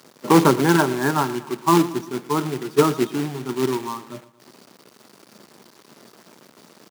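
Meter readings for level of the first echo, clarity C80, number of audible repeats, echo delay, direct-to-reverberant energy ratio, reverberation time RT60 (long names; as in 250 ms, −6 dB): −17.0 dB, no reverb audible, 3, 116 ms, no reverb audible, no reverb audible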